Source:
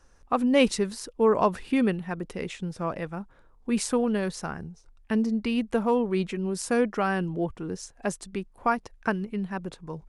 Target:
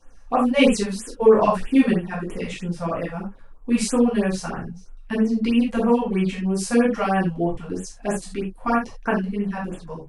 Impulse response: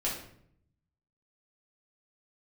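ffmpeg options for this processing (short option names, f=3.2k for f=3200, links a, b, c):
-filter_complex "[1:a]atrim=start_sample=2205,atrim=end_sample=4410[a];[0:a][a]afir=irnorm=-1:irlink=0,afftfilt=real='re*(1-between(b*sr/1024,280*pow(5000/280,0.5+0.5*sin(2*PI*3.1*pts/sr))/1.41,280*pow(5000/280,0.5+0.5*sin(2*PI*3.1*pts/sr))*1.41))':imag='im*(1-between(b*sr/1024,280*pow(5000/280,0.5+0.5*sin(2*PI*3.1*pts/sr))/1.41,280*pow(5000/280,0.5+0.5*sin(2*PI*3.1*pts/sr))*1.41))':win_size=1024:overlap=0.75"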